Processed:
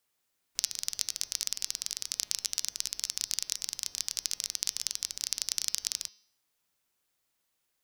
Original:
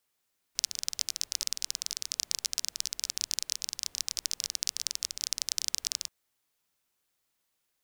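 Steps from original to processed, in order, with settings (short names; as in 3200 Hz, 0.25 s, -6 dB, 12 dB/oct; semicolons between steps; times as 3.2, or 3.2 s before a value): de-hum 208.7 Hz, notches 30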